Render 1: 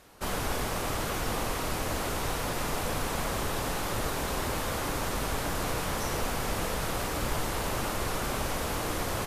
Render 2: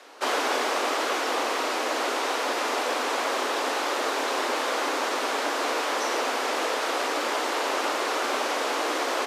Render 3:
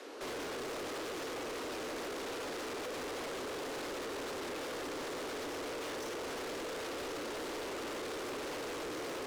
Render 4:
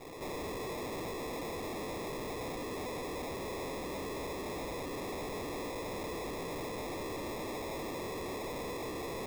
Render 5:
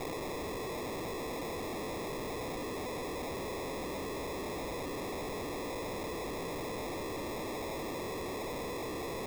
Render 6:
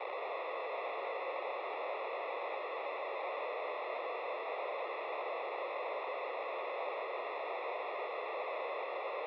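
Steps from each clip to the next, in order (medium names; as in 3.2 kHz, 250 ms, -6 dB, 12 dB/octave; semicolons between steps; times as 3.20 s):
steep high-pass 240 Hz 96 dB/octave; three-band isolator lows -13 dB, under 310 Hz, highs -16 dB, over 6.9 kHz; gain riding 2 s; trim +7.5 dB
resonant low shelf 570 Hz +7.5 dB, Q 1.5; peak limiter -20 dBFS, peak gain reduction 9 dB; saturation -38 dBFS, distortion -6 dB; trim -1 dB
sample-rate reducer 1.5 kHz, jitter 0%; trim +1 dB
level flattener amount 100%
on a send at -4 dB: reverberation RT60 2.1 s, pre-delay 75 ms; on the sum: mistuned SSB +67 Hz 420–3200 Hz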